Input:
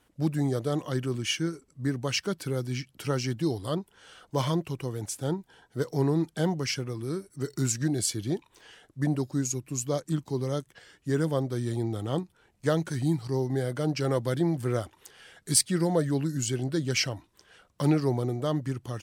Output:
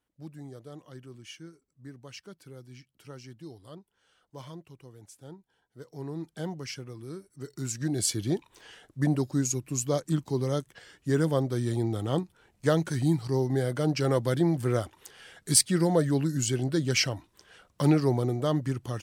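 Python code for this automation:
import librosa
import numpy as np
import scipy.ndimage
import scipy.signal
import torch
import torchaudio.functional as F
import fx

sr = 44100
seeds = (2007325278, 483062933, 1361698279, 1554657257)

y = fx.gain(x, sr, db=fx.line((5.81, -16.5), (6.33, -8.0), (7.57, -8.0), (8.09, 1.5)))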